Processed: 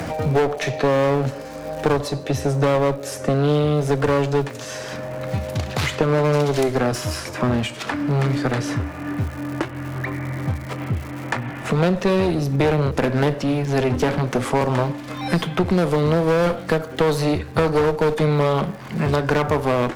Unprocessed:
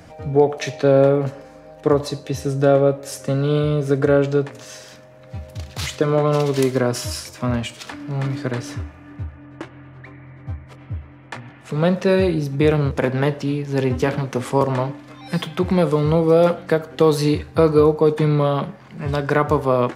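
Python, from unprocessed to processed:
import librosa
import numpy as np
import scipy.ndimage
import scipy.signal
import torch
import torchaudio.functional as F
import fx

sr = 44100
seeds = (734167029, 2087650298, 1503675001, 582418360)

y = fx.dmg_crackle(x, sr, seeds[0], per_s=220.0, level_db=-43.0)
y = fx.clip_asym(y, sr, top_db=-25.0, bottom_db=-10.0)
y = fx.band_squash(y, sr, depth_pct=70)
y = y * librosa.db_to_amplitude(2.0)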